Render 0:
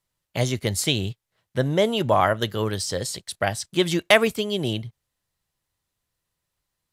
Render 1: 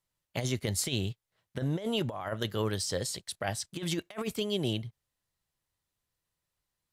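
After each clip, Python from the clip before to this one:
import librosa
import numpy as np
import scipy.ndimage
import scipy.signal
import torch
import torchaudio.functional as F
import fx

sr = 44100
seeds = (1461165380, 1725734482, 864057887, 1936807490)

y = fx.over_compress(x, sr, threshold_db=-23.0, ratio=-0.5)
y = y * 10.0 ** (-7.5 / 20.0)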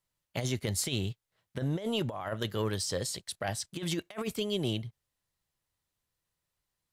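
y = 10.0 ** (-18.5 / 20.0) * np.tanh(x / 10.0 ** (-18.5 / 20.0))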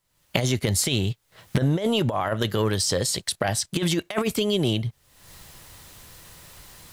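y = fx.recorder_agc(x, sr, target_db=-23.0, rise_db_per_s=54.0, max_gain_db=30)
y = y * 10.0 ** (8.0 / 20.0)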